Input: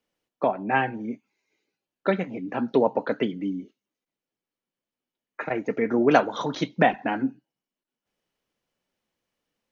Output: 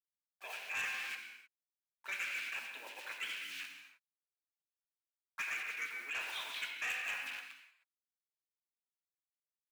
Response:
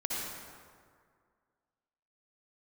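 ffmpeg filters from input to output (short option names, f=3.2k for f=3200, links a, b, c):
-filter_complex "[0:a]asplit=2[a][b];[b]adelay=268.2,volume=-25dB,highshelf=f=4k:g=-6.04[c];[a][c]amix=inputs=2:normalize=0,acrossover=split=4200[d][e];[e]acompressor=threshold=-55dB:ratio=4:attack=1:release=60[f];[d][f]amix=inputs=2:normalize=0,flanger=delay=1.7:depth=2.2:regen=-78:speed=1.6:shape=sinusoidal,acrusher=bits=7:mix=0:aa=0.000001,highshelf=f=3.9k:g=-4.5,areverse,acompressor=threshold=-34dB:ratio=6,areverse,highpass=f=2.5k:t=q:w=6,asplit=2[g][h];[1:a]atrim=start_sample=2205,afade=t=out:st=0.37:d=0.01,atrim=end_sample=16758[i];[h][i]afir=irnorm=-1:irlink=0,volume=-5dB[j];[g][j]amix=inputs=2:normalize=0,asplit=2[k][l];[l]asetrate=29433,aresample=44100,atempo=1.49831,volume=-8dB[m];[k][m]amix=inputs=2:normalize=0,asoftclip=type=tanh:threshold=-35dB,volume=1.5dB"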